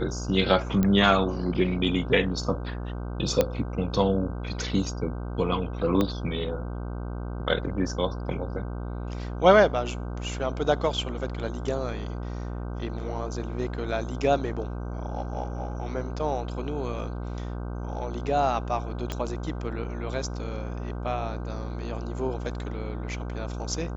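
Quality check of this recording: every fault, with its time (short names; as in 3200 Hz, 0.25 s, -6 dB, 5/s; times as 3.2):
buzz 60 Hz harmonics 26 -33 dBFS
0.83 pop -13 dBFS
3.41 pop -8 dBFS
6.01 pop -12 dBFS
19.12 pop -16 dBFS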